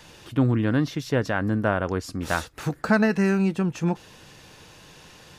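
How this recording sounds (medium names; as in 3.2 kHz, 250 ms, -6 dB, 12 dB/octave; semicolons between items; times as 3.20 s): noise floor -50 dBFS; spectral tilt -5.0 dB/octave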